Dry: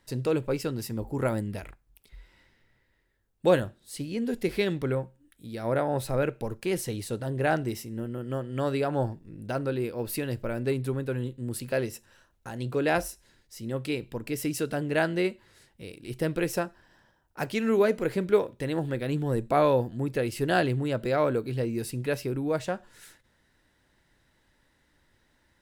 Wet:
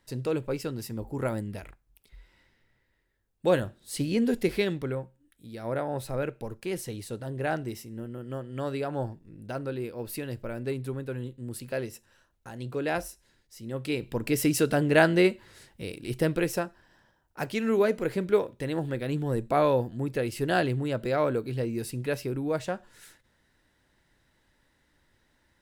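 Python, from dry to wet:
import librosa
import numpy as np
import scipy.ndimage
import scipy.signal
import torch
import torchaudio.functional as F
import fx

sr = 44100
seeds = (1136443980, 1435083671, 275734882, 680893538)

y = fx.gain(x, sr, db=fx.line((3.47, -2.5), (4.09, 6.5), (4.93, -4.0), (13.65, -4.0), (14.23, 5.5), (15.96, 5.5), (16.62, -1.0)))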